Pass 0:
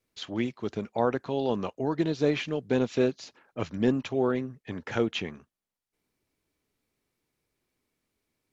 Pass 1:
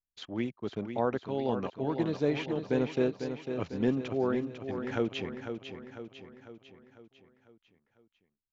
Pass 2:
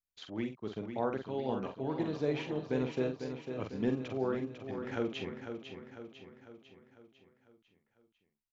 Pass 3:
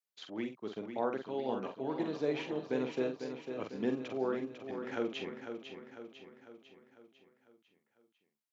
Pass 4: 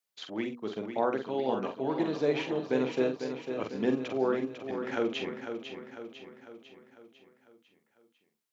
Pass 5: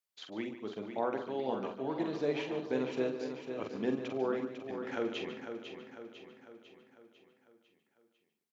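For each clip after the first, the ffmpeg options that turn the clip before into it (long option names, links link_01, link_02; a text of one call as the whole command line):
ffmpeg -i in.wav -filter_complex "[0:a]anlmdn=0.0398,highshelf=frequency=3800:gain=-6.5,asplit=2[link_01][link_02];[link_02]aecho=0:1:499|998|1497|1996|2495|2994:0.398|0.207|0.108|0.056|0.0291|0.0151[link_03];[link_01][link_03]amix=inputs=2:normalize=0,volume=-3.5dB" out.wav
ffmpeg -i in.wav -filter_complex "[0:a]asplit=2[link_01][link_02];[link_02]adelay=46,volume=-6.5dB[link_03];[link_01][link_03]amix=inputs=2:normalize=0,volume=-4.5dB" out.wav
ffmpeg -i in.wav -af "highpass=220" out.wav
ffmpeg -i in.wav -af "bandreject=frequency=60:width_type=h:width=6,bandreject=frequency=120:width_type=h:width=6,bandreject=frequency=180:width_type=h:width=6,bandreject=frequency=240:width_type=h:width=6,bandreject=frequency=300:width_type=h:width=6,bandreject=frequency=360:width_type=h:width=6,bandreject=frequency=420:width_type=h:width=6,bandreject=frequency=480:width_type=h:width=6,volume=6dB" out.wav
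ffmpeg -i in.wav -filter_complex "[0:a]asplit=2[link_01][link_02];[link_02]adelay=145.8,volume=-11dB,highshelf=frequency=4000:gain=-3.28[link_03];[link_01][link_03]amix=inputs=2:normalize=0,volume=-5dB" out.wav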